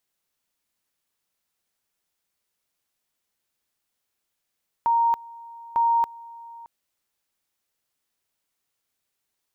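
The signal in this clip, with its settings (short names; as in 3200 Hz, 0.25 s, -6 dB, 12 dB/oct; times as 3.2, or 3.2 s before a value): two-level tone 930 Hz -17 dBFS, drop 22 dB, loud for 0.28 s, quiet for 0.62 s, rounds 2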